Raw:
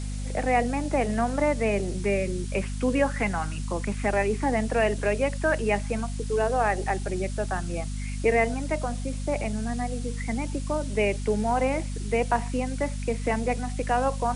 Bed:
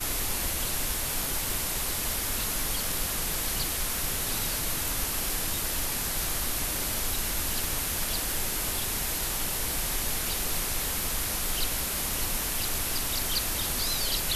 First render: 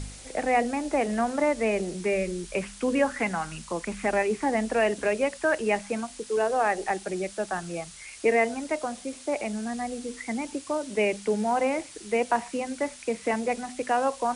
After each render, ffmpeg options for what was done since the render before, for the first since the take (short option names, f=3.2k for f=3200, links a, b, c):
-af "bandreject=f=50:t=h:w=4,bandreject=f=100:t=h:w=4,bandreject=f=150:t=h:w=4,bandreject=f=200:t=h:w=4,bandreject=f=250:t=h:w=4"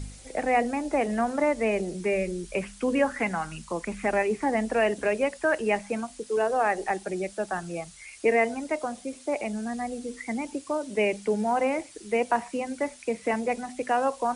-af "afftdn=nr=6:nf=-46"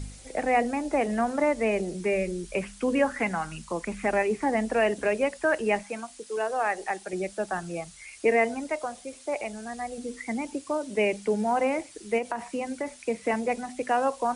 -filter_complex "[0:a]asettb=1/sr,asplit=3[a][b][c];[a]atrim=end=5.834[d];[b]atrim=start=5.83:end=7.13,asetpts=PTS-STARTPTS,afade=t=in:d=0.004:c=qsin,afade=t=out:st=1.296:d=0.004:c=qsin,lowshelf=f=470:g=-9.5[e];[c]atrim=start=7.126[f];[d][e]acrossfade=d=0.004:c1=hsin:c2=qsin[g];[g][f]acrossfade=d=0.004:c1=qsin:c2=hsin,asettb=1/sr,asplit=3[h][i][j];[h]atrim=end=8.694[k];[i]atrim=start=8.69:end=9.98,asetpts=PTS-STARTPTS,afade=t=in:d=0.004:c=qsin,afade=t=out:st=1.286:d=0.004:c=qsin,equalizer=f=230:t=o:w=1.2:g=-8.5[l];[j]atrim=start=9.976[m];[k][l]acrossfade=d=0.004:c1=hsin:c2=qsin[n];[n][m]acrossfade=d=0.004:c1=qsin:c2=hsin,asettb=1/sr,asplit=3[o][p][q];[o]atrim=end=12.184[r];[p]atrim=start=12.18:end=13.05,asetpts=PTS-STARTPTS,afade=t=in:d=0.004:c=qsin,afade=t=out:st=0.866:d=0.004:c=qsin,acompressor=threshold=-25dB:ratio=10:attack=3.2:release=140:knee=1:detection=peak[s];[q]atrim=start=13.046[t];[r][s]acrossfade=d=0.004:c1=hsin:c2=qsin[u];[u][t]acrossfade=d=0.004:c1=qsin:c2=hsin"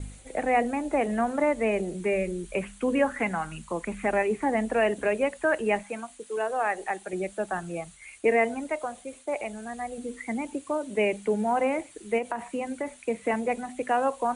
-af "agate=range=-33dB:threshold=-44dB:ratio=3:detection=peak,equalizer=f=5.2k:w=2.8:g=-13.5"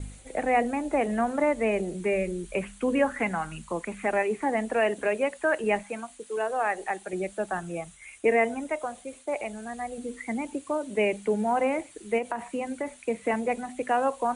-filter_complex "[0:a]asettb=1/sr,asplit=3[a][b][c];[a]atrim=end=3.814[d];[b]atrim=start=3.81:end=5.64,asetpts=PTS-STARTPTS,afade=t=in:d=0.004:c=qsin,afade=t=out:st=1.826:d=0.004:c=qsin,lowshelf=f=140:g=-10[e];[c]atrim=start=5.636[f];[d][e]acrossfade=d=0.004:c1=hsin:c2=qsin[g];[g][f]acrossfade=d=0.004:c1=qsin:c2=hsin,asettb=1/sr,asplit=3[h][i][j];[h]atrim=end=7.594[k];[i]atrim=start=7.59:end=8.85,asetpts=PTS-STARTPTS,afade=t=in:d=0.004:c=qsin,afade=t=out:st=1.256:d=0.004:c=qsin,bandreject=f=4.4k:w=7.9[l];[j]atrim=start=8.846[m];[k][l]acrossfade=d=0.004:c1=hsin:c2=qsin[n];[n][m]acrossfade=d=0.004:c1=qsin:c2=hsin"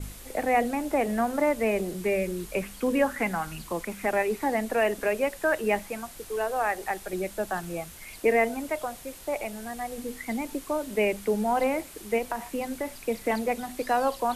-filter_complex "[1:a]volume=-17dB[a];[0:a][a]amix=inputs=2:normalize=0"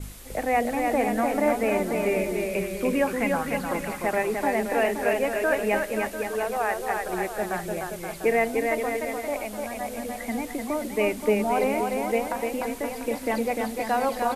-af "aecho=1:1:300|525|693.8|820.3|915.2:0.631|0.398|0.251|0.158|0.1"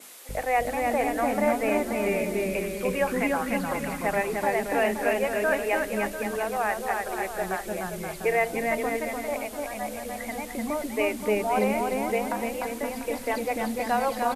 -filter_complex "[0:a]acrossover=split=350[a][b];[a]adelay=290[c];[c][b]amix=inputs=2:normalize=0"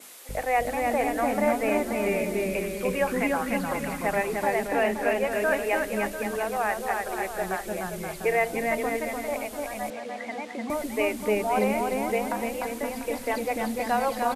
-filter_complex "[0:a]asettb=1/sr,asplit=3[a][b][c];[a]atrim=end=4.674[d];[b]atrim=start=4.67:end=5.32,asetpts=PTS-STARTPTS,afade=t=in:d=0.004:c=qsin,afade=t=out:st=0.646:d=0.004:c=qsin,highshelf=f=5.5k:g=-4.5[e];[c]atrim=start=5.316[f];[d][e]acrossfade=d=0.004:c1=hsin:c2=qsin[g];[g][f]acrossfade=d=0.004:c1=qsin:c2=hsin,asettb=1/sr,asplit=3[h][i][j];[h]atrim=end=9.904[k];[i]atrim=start=9.9:end=10.7,asetpts=PTS-STARTPTS,afade=t=in:d=0.004:c=qsin,afade=t=out:st=0.796:d=0.004:c=qsin,highpass=230,lowpass=4.6k[l];[j]atrim=start=10.696[m];[k][l]acrossfade=d=0.004:c1=hsin:c2=qsin[n];[n][m]acrossfade=d=0.004:c1=qsin:c2=hsin"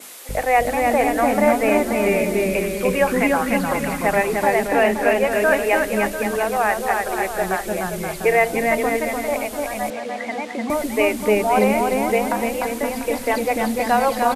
-af "volume=7.5dB"